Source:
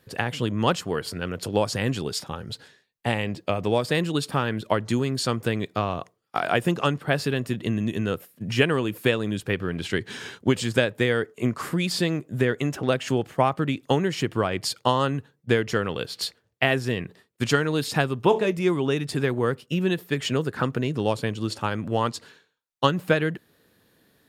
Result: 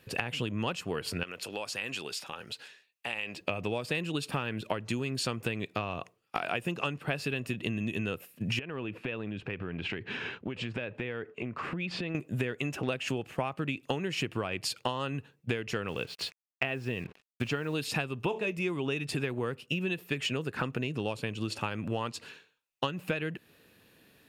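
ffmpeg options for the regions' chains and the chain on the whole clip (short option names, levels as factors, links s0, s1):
-filter_complex "[0:a]asettb=1/sr,asplit=3[s0][s1][s2];[s0]atrim=end=1.234[s3];[s1]atrim=start=1.23:end=3.41,asetpts=PTS-STARTPTS,afade=t=in:d=0.004:c=qsin,afade=t=out:st=2.176:d=0.004:c=qsin,highpass=f=820:p=1,acompressor=threshold=0.0141:ratio=2.5:attack=3.2:release=140:knee=1:detection=peak[s4];[s2]atrim=start=3.406[s5];[s3][s4]acrossfade=d=0.004:c1=hsin:c2=qsin[s6];[s6][s5]acrossfade=d=0.004:c1=qsin:c2=hsin,asettb=1/sr,asplit=3[s7][s8][s9];[s7]atrim=end=8.594[s10];[s8]atrim=start=8.59:end=12.15,asetpts=PTS-STARTPTS,afade=t=in:d=0.004:c=qsin,afade=t=out:st=3.556:d=0.004:c=qsin,lowpass=2500,acompressor=threshold=0.0251:ratio=6:attack=3.2:release=140:knee=1:detection=peak[s11];[s9]atrim=start=12.146[s12];[s10][s11]acrossfade=d=0.004:c1=hsin:c2=qsin[s13];[s13][s12]acrossfade=d=0.004:c1=qsin:c2=hsin,asettb=1/sr,asplit=3[s14][s15][s16];[s14]atrim=end=15.884[s17];[s15]atrim=start=15.88:end=17.75,asetpts=PTS-STARTPTS,afade=t=in:d=0.004:c=qsin,afade=t=out:st=1.866:d=0.004:c=qsin,lowpass=f=2100:p=1,acrusher=bits=7:mix=0:aa=0.5[s18];[s16]atrim=start=17.746[s19];[s17][s18]acrossfade=d=0.004:c1=hsin:c2=qsin[s20];[s20][s19]acrossfade=d=0.004:c1=qsin:c2=hsin,equalizer=f=2600:t=o:w=0.29:g=12,acompressor=threshold=0.0355:ratio=6"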